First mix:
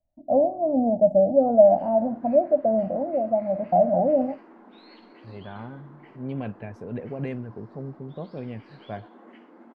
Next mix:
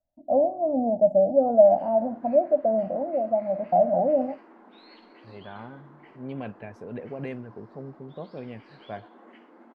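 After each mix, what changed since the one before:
master: add bass shelf 220 Hz -8.5 dB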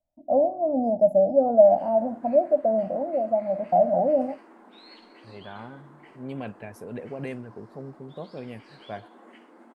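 master: remove distance through air 150 m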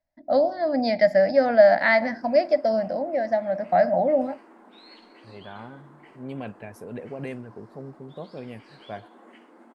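first voice: remove elliptic band-stop 780–9300 Hz, stop band 50 dB

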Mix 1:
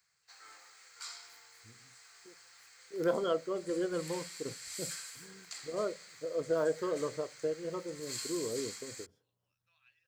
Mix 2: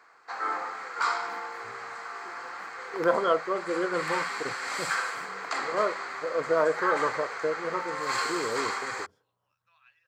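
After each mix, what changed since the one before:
background: remove differentiator; master: add peaking EQ 1.1 kHz +14 dB 1.8 oct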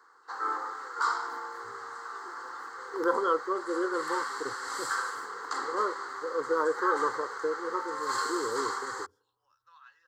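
first voice +11.5 dB; master: add static phaser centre 650 Hz, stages 6

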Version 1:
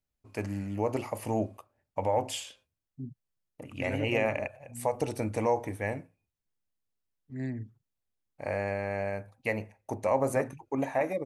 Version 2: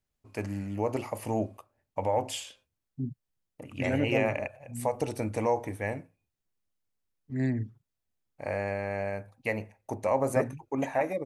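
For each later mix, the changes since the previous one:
second voice +6.5 dB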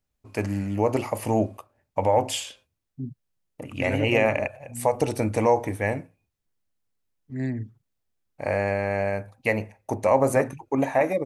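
first voice +7.0 dB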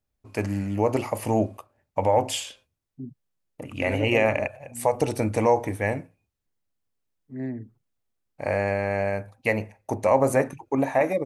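second voice: add band-pass filter 490 Hz, Q 0.56

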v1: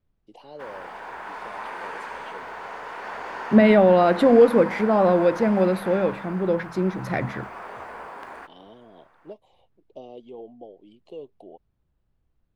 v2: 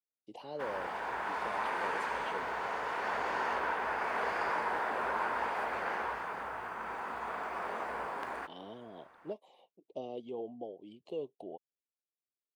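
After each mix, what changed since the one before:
second voice: muted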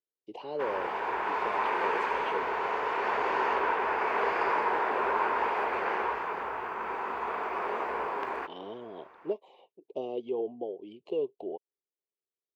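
master: add fifteen-band graphic EQ 400 Hz +11 dB, 1 kHz +6 dB, 2.5 kHz +7 dB, 10 kHz -11 dB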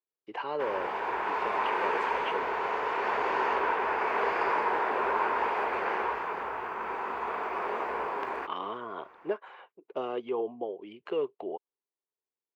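speech: remove Butterworth band-stop 1.5 kHz, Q 0.58

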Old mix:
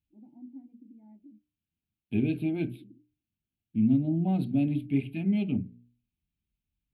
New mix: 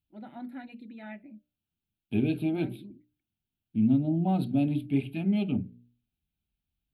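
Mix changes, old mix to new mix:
first voice: remove cascade formant filter u; master: add FFT filter 280 Hz 0 dB, 1.3 kHz +9 dB, 2 kHz -2 dB, 3.5 kHz +5 dB

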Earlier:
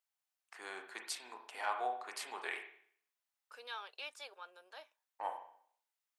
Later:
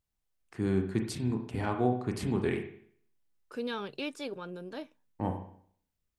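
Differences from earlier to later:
second voice +5.0 dB; master: remove high-pass 710 Hz 24 dB/octave

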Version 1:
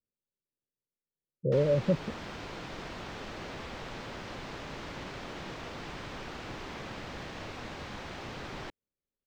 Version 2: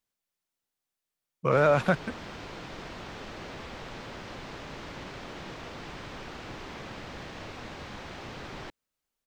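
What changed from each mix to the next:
speech: remove rippled Chebyshev low-pass 580 Hz, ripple 3 dB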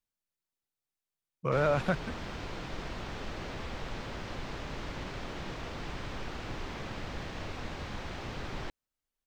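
speech -6.0 dB; master: add bass shelf 78 Hz +11 dB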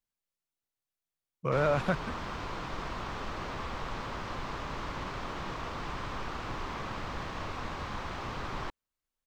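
background: add peaking EQ 1.1 kHz +9 dB 0.71 oct

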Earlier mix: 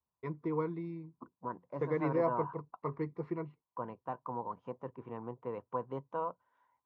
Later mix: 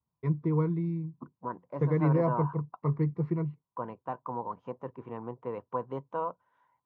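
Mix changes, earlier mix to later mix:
first voice: add peaking EQ 140 Hz +15 dB 1.5 oct; second voice +3.5 dB

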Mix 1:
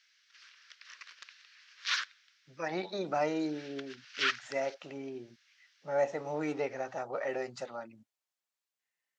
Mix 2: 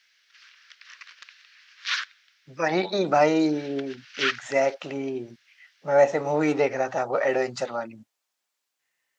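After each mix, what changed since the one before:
speech +11.5 dB; background: add peaking EQ 2.2 kHz +5.5 dB 2.6 oct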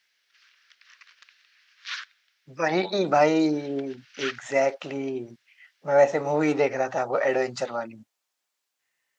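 background -7.0 dB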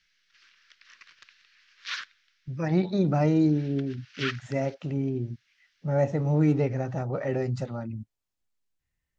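speech -11.5 dB; master: remove high-pass 600 Hz 12 dB/octave

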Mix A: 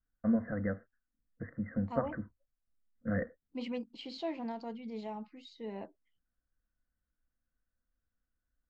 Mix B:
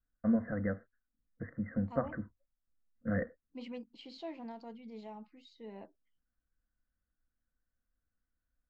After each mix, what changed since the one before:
second voice -6.0 dB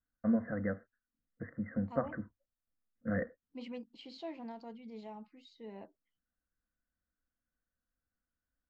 first voice: add bass shelf 65 Hz -10.5 dB

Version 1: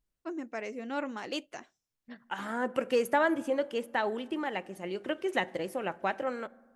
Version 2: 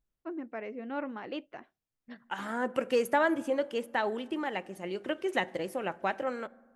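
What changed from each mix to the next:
first voice: add distance through air 390 m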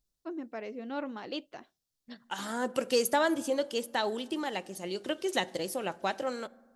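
master: add resonant high shelf 3.1 kHz +10.5 dB, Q 1.5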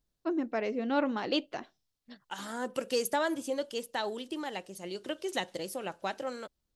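first voice +7.5 dB; reverb: off

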